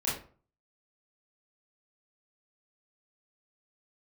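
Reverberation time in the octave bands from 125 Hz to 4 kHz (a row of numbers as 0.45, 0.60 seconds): 0.55, 0.45, 0.45, 0.40, 0.35, 0.25 seconds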